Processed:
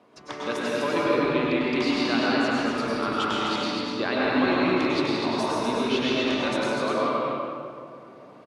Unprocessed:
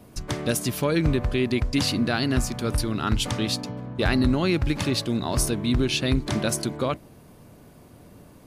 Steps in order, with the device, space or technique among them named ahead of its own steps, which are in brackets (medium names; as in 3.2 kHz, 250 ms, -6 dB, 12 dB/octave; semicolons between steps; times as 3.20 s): station announcement (band-pass 350–3700 Hz; peaking EQ 1.1 kHz +5 dB 0.44 oct; loudspeakers at several distances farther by 56 m -10 dB, 85 m -4 dB; reverberation RT60 2.3 s, pre-delay 93 ms, DRR -5 dB); trim -4 dB